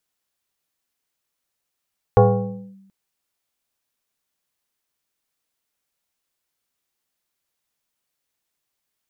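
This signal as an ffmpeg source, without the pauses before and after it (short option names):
-f lavfi -i "aevalsrc='0.473*pow(10,-3*t/0.96)*sin(2*PI*194*t+2.1*clip(1-t/0.59,0,1)*sin(2*PI*1.57*194*t))':d=0.73:s=44100"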